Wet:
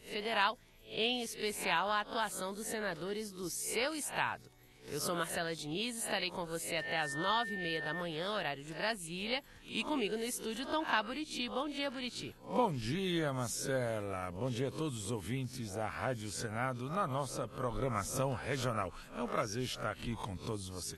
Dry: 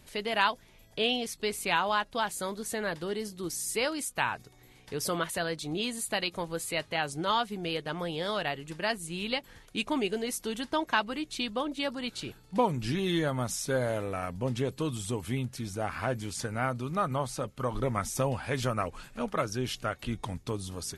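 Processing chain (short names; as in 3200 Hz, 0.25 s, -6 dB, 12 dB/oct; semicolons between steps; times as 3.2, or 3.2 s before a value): spectral swells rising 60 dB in 0.34 s; 6.8–8 whine 1800 Hz -33 dBFS; gain -6 dB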